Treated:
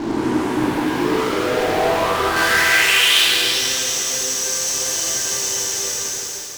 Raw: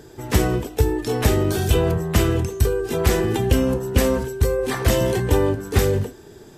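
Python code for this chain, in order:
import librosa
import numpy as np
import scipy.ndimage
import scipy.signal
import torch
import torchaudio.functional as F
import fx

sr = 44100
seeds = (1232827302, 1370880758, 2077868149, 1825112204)

y = fx.spec_blur(x, sr, span_ms=965.0)
y = fx.filter_sweep_bandpass(y, sr, from_hz=280.0, to_hz=6100.0, start_s=0.83, end_s=3.65, q=5.8)
y = fx.fuzz(y, sr, gain_db=52.0, gate_db=-59.0)
y = fx.tilt_shelf(y, sr, db=-8.5, hz=810.0, at=(2.36, 3.25))
y = fx.rev_plate(y, sr, seeds[0], rt60_s=3.0, hf_ratio=0.9, predelay_ms=0, drr_db=-6.0)
y = y * 10.0 ** (-11.0 / 20.0)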